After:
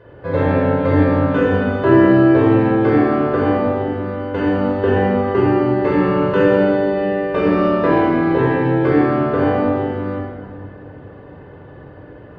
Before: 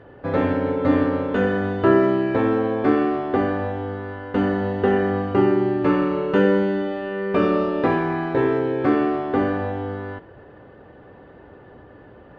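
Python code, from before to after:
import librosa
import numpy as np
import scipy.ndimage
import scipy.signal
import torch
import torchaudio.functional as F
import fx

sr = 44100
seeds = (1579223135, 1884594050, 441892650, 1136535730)

y = fx.room_shoebox(x, sr, seeds[0], volume_m3=3300.0, walls='mixed', distance_m=5.1)
y = y * 10.0 ** (-2.5 / 20.0)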